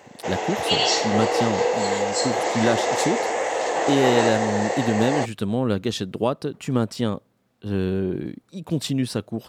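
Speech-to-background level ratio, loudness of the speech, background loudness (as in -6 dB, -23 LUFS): -2.5 dB, -25.5 LUFS, -23.0 LUFS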